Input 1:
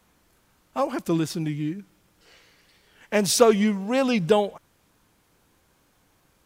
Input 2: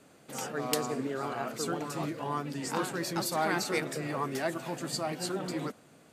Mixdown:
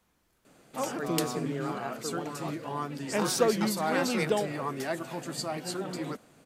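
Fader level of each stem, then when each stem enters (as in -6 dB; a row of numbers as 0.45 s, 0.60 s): -8.5 dB, -0.5 dB; 0.00 s, 0.45 s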